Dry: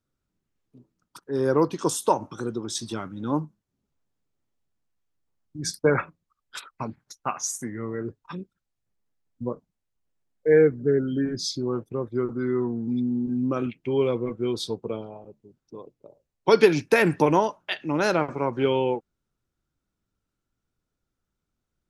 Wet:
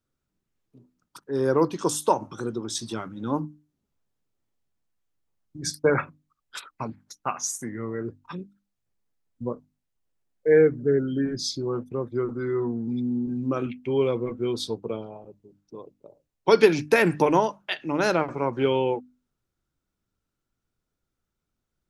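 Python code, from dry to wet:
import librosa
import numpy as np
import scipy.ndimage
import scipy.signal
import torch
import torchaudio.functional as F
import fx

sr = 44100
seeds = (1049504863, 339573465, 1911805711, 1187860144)

y = fx.hum_notches(x, sr, base_hz=50, count=6)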